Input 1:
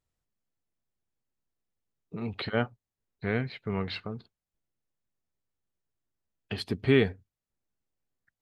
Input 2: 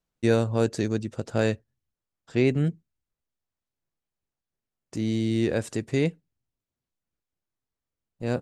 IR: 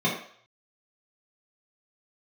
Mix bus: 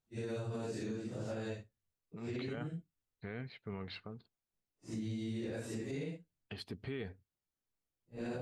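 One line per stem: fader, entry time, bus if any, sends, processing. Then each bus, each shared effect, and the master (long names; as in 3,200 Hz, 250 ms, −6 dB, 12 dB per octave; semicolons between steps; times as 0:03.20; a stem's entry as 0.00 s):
−10.5 dB, 0.00 s, no send, no processing
−5.5 dB, 0.00 s, no send, random phases in long frames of 200 ms; downward compressor 6 to 1, threshold −30 dBFS, peak gain reduction 13 dB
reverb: not used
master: brickwall limiter −31.5 dBFS, peak gain reduction 11 dB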